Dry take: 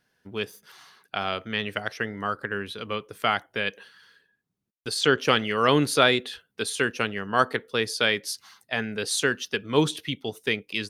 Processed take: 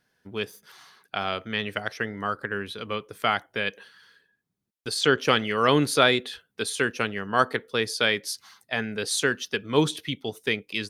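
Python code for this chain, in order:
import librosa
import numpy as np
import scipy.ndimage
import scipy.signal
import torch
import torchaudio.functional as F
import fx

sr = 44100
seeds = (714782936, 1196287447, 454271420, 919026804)

y = fx.notch(x, sr, hz=2800.0, q=25.0)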